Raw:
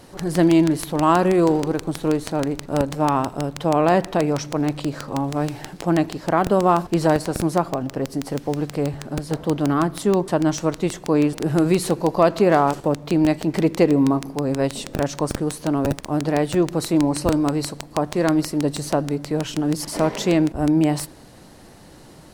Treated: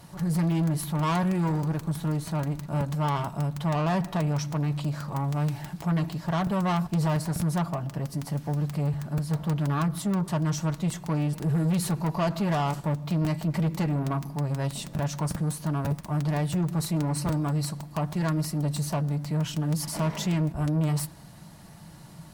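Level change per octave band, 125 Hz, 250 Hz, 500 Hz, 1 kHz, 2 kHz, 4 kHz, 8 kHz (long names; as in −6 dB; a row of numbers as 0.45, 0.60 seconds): +1.0, −8.0, −13.5, −9.0, −8.0, −6.5, −5.0 decibels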